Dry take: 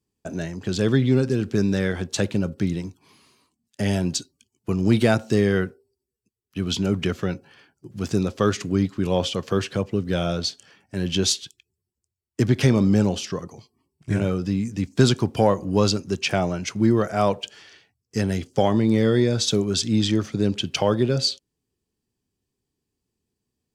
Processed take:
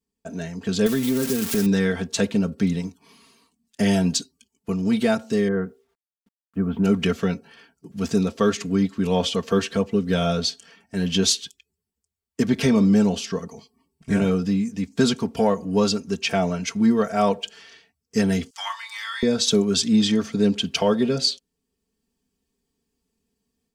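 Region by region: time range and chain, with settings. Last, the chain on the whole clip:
0.86–1.66 switching spikes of -14.5 dBFS + compressor 4:1, threshold -19 dBFS
5.48–6.84 LPF 1500 Hz 24 dB/oct + requantised 12-bit, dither none
18.5–19.23 steep high-pass 960 Hz 48 dB/oct + doubler 30 ms -10.5 dB
whole clip: comb 4.4 ms, depth 80%; AGC gain up to 8 dB; gain -6 dB

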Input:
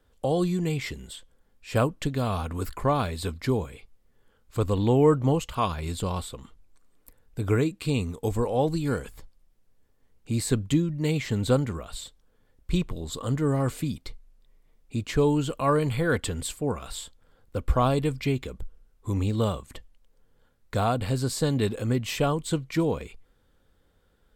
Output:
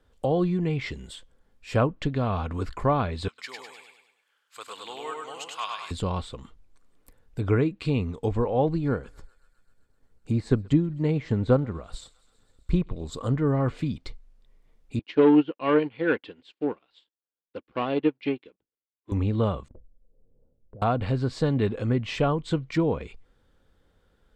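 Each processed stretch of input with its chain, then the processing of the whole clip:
3.28–5.91 HPF 1500 Hz + feedback echo 0.101 s, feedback 48%, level -3 dB
8.77–13.34 bell 2800 Hz -6 dB 1.3 oct + transient shaper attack +2 dB, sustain -4 dB + thinning echo 0.129 s, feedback 78%, high-pass 710 Hz, level -24 dB
14.99–19.12 sample leveller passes 2 + speaker cabinet 290–4400 Hz, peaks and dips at 310 Hz +6 dB, 650 Hz -4 dB, 1200 Hz -5 dB, 2800 Hz +5 dB + upward expander 2.5:1, over -39 dBFS
19.68–20.82 Chebyshev low-pass 550 Hz, order 3 + compressor, threshold -44 dBFS
whole clip: treble ducked by the level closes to 2600 Hz, closed at -22.5 dBFS; high shelf 10000 Hz -11.5 dB; gain +1 dB

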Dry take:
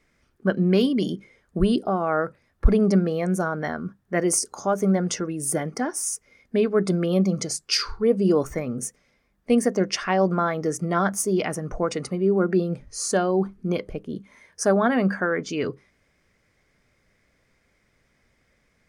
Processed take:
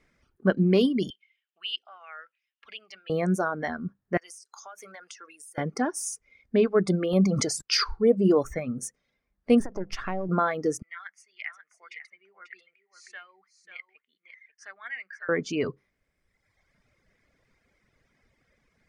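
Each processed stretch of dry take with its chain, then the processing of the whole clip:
1.1–3.1 resonant high-pass 2900 Hz, resonance Q 6.8 + tape spacing loss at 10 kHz 23 dB + de-esser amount 70%
4.17–5.58 HPF 1500 Hz + compressor 12:1, threshold -38 dBFS
7.13–7.84 gate -40 dBFS, range -50 dB + sustainer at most 27 dB/s
9.6–10.29 half-wave gain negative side -7 dB + tilt -2 dB/oct + compressor, threshold -24 dBFS
10.82–15.29 de-esser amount 20% + ladder band-pass 2200 Hz, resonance 75% + echo 0.54 s -9.5 dB
whole clip: high shelf 6000 Hz -5.5 dB; reverb removal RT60 1.3 s; high shelf 12000 Hz -3 dB

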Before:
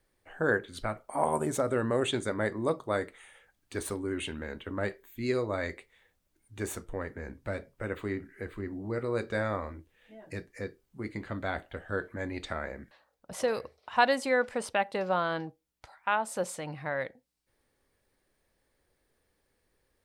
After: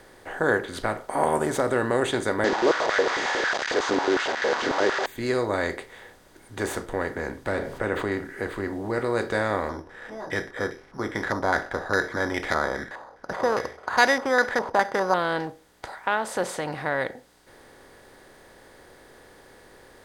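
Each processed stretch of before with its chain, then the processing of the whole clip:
2.44–5.06 delta modulation 32 kbps, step -28.5 dBFS + de-esser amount 35% + stepped high-pass 11 Hz 280–1800 Hz
7.52–8.12 high shelf 4000 Hz -9.5 dB + fast leveller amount 50%
9.69–15.14 careless resampling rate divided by 8×, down filtered, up zero stuff + stepped low-pass 4.9 Hz 980–2200 Hz
whole clip: per-bin compression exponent 0.6; bell 2600 Hz -4 dB 0.41 oct

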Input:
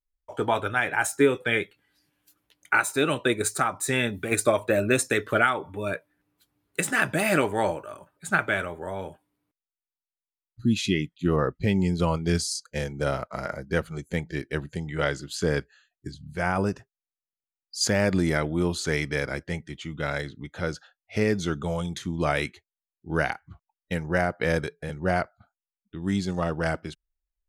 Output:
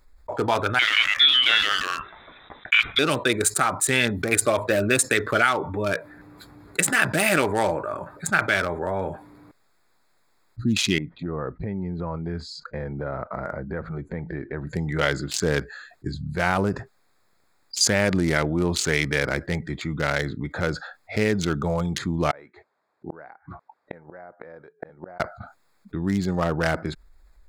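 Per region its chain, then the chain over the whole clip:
0.79–2.99 inverted band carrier 3800 Hz + echoes that change speed 86 ms, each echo -2 st, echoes 2, each echo -6 dB
10.98–14.67 LPF 2000 Hz + compressor 2.5:1, threshold -42 dBFS
22.31–25.2 flipped gate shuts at -24 dBFS, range -39 dB + band-pass 730 Hz, Q 0.76
whole clip: Wiener smoothing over 15 samples; tilt shelf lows -4.5 dB, about 1500 Hz; fast leveller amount 50%; gain -1.5 dB

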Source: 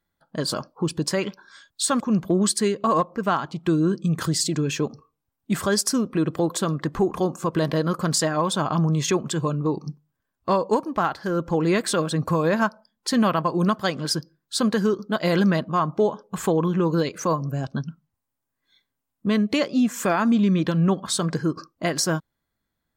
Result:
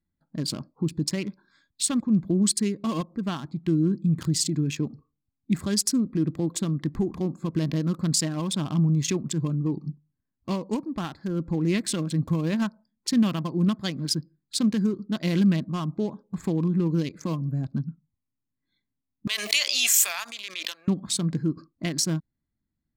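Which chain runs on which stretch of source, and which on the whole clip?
19.27–20.88 HPF 600 Hz 24 dB/oct + tilt +4.5 dB/oct + backwards sustainer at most 23 dB/s
whole clip: Wiener smoothing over 15 samples; band shelf 820 Hz -13 dB 2.3 oct

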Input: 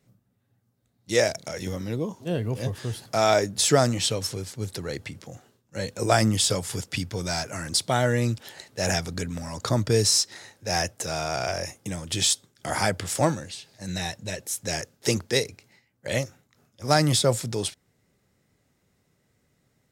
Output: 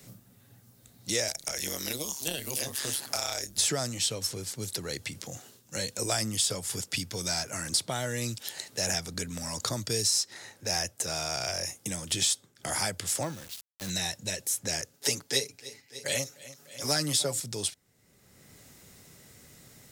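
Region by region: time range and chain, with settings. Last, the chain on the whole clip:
1.28–3.57 AM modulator 140 Hz, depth 70% + tilt +3 dB/oct + three-band squash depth 100%
13.23–13.9 air absorption 160 m + sample gate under -40 dBFS
14.93–17.4 HPF 180 Hz + comb 7.1 ms, depth 89% + feedback echo 0.297 s, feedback 45%, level -22 dB
whole clip: high shelf 3500 Hz +11.5 dB; three-band squash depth 70%; gain -9 dB

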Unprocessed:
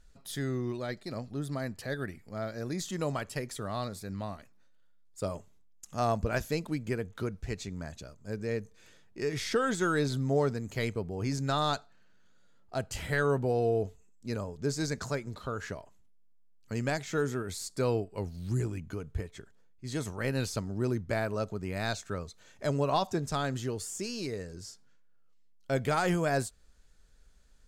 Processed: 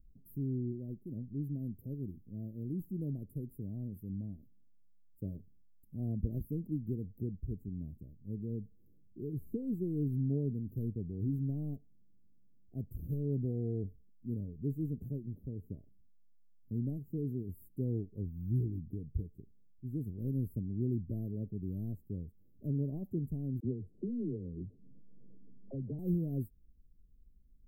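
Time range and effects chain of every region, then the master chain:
23.6–25.99 LFO low-pass sine 7.9 Hz 510–1800 Hz + dispersion lows, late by 45 ms, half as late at 370 Hz + three-band squash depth 100%
whole clip: inverse Chebyshev band-stop 1400–5100 Hz, stop band 80 dB; high shelf 8300 Hz +4.5 dB; gain -1 dB

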